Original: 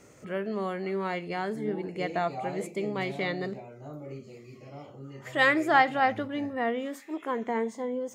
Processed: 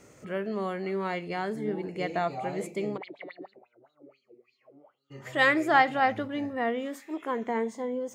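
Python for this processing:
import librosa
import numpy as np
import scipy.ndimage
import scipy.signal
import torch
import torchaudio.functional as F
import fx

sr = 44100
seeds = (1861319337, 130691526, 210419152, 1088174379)

y = fx.filter_lfo_bandpass(x, sr, shape='sine', hz=fx.line((2.96, 8.6), (5.1, 1.6)), low_hz=300.0, high_hz=4200.0, q=7.4, at=(2.96, 5.1), fade=0.02)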